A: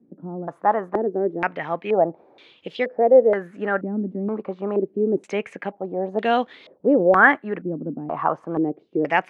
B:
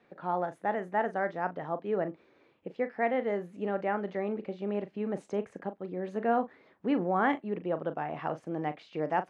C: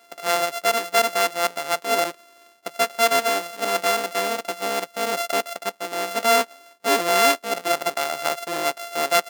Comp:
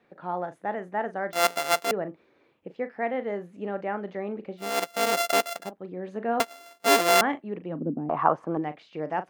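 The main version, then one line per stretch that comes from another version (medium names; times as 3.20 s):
B
1.33–1.91 s: from C
4.69–5.60 s: from C, crossfade 0.24 s
6.40–7.21 s: from C
7.74–8.57 s: from A, crossfade 0.16 s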